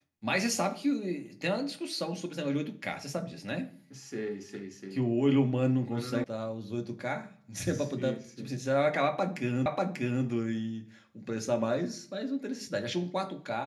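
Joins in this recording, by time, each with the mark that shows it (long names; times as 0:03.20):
0:06.24: cut off before it has died away
0:09.66: the same again, the last 0.59 s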